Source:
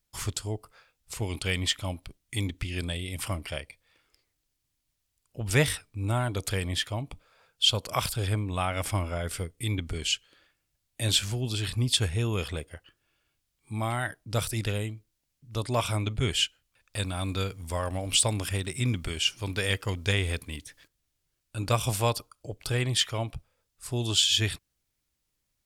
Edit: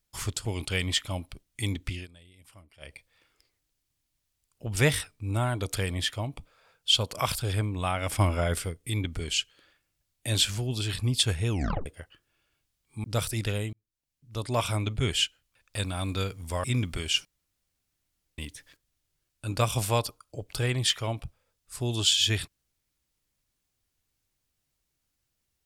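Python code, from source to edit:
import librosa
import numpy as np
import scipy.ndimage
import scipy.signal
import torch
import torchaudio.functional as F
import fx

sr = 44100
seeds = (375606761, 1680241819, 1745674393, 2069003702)

y = fx.edit(x, sr, fx.cut(start_s=0.45, length_s=0.74),
    fx.fade_down_up(start_s=2.68, length_s=0.99, db=-21.5, fade_s=0.13),
    fx.clip_gain(start_s=8.93, length_s=0.4, db=5.0),
    fx.tape_stop(start_s=12.24, length_s=0.36),
    fx.cut(start_s=13.78, length_s=0.46),
    fx.fade_in_span(start_s=14.93, length_s=0.86),
    fx.cut(start_s=17.84, length_s=0.91),
    fx.room_tone_fill(start_s=19.36, length_s=1.13), tone=tone)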